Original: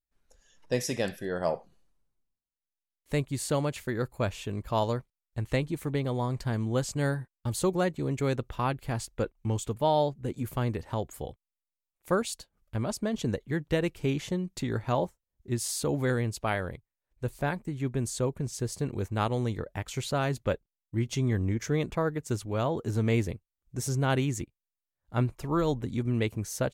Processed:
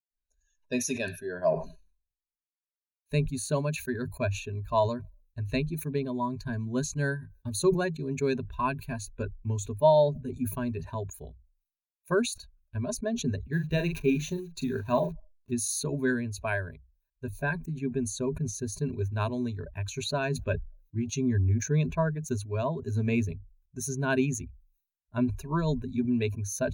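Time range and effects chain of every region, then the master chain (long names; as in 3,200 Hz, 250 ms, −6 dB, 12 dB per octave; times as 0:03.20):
0:13.53–0:15.51: hold until the input has moved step −45 dBFS + double-tracking delay 41 ms −7 dB
whole clip: spectral dynamics exaggerated over time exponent 1.5; EQ curve with evenly spaced ripples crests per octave 1.5, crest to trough 17 dB; level that may fall only so fast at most 110 dB per second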